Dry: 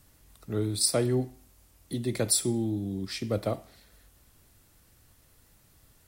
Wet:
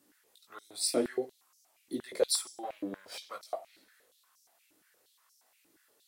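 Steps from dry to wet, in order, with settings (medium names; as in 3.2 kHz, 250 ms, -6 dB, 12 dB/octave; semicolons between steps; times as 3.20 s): 2.63–3.31 s: comb filter that takes the minimum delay 1.3 ms; chorus voices 4, 1.4 Hz, delay 18 ms, depth 3 ms; step-sequenced high-pass 8.5 Hz 310–5600 Hz; trim -4 dB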